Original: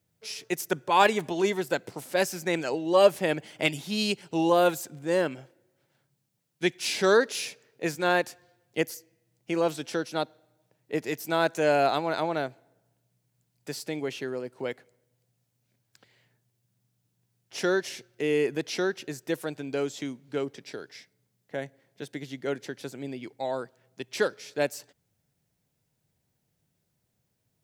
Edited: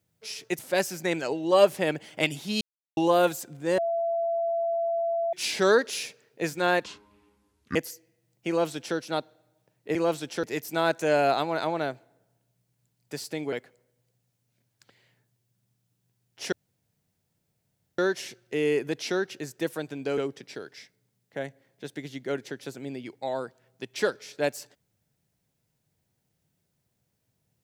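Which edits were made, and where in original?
0:00.59–0:02.01: remove
0:04.03–0:04.39: silence
0:05.20–0:06.75: beep over 673 Hz −24 dBFS
0:08.26–0:08.79: play speed 58%
0:09.52–0:10.00: duplicate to 0:10.99
0:14.08–0:14.66: remove
0:17.66: splice in room tone 1.46 s
0:19.85–0:20.35: remove

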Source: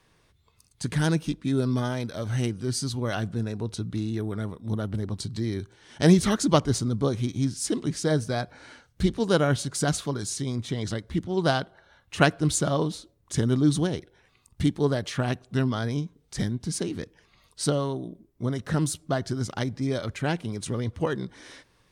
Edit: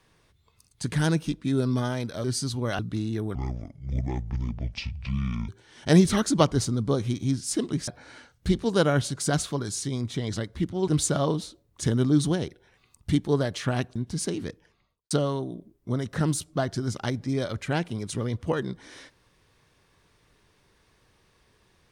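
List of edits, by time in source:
0:02.24–0:02.64: remove
0:03.19–0:03.80: remove
0:04.36–0:05.62: play speed 59%
0:08.01–0:08.42: remove
0:11.42–0:12.39: remove
0:15.47–0:16.49: remove
0:17.01–0:17.64: fade out and dull

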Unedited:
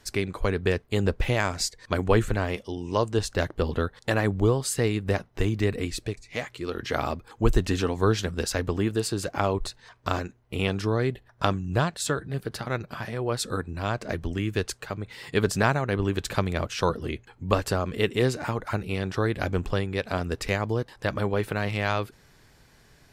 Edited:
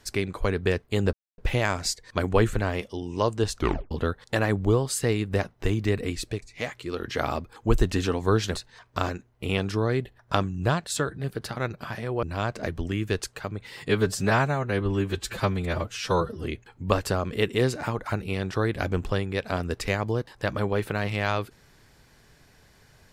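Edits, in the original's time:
0:01.13: splice in silence 0.25 s
0:03.30: tape stop 0.36 s
0:08.30–0:09.65: remove
0:13.33–0:13.69: remove
0:15.35–0:17.05: time-stretch 1.5×

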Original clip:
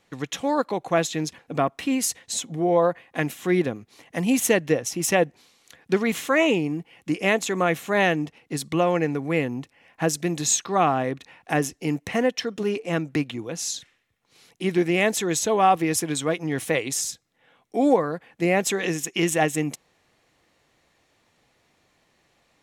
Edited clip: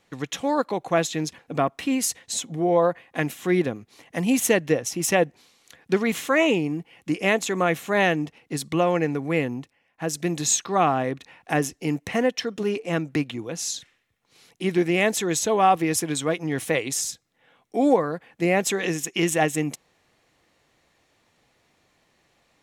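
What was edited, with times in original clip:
0:09.52–0:10.24: duck −13 dB, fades 0.32 s

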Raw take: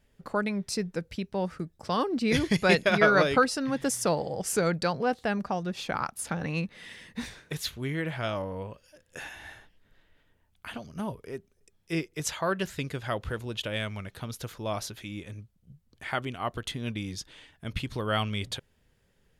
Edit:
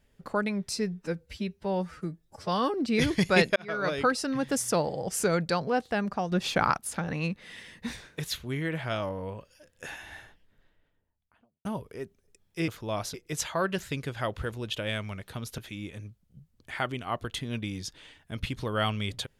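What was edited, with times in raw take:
0:00.73–0:02.07: time-stretch 1.5×
0:02.89–0:03.58: fade in
0:05.65–0:06.11: clip gain +6 dB
0:09.46–0:10.98: fade out and dull
0:14.45–0:14.91: move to 0:12.01

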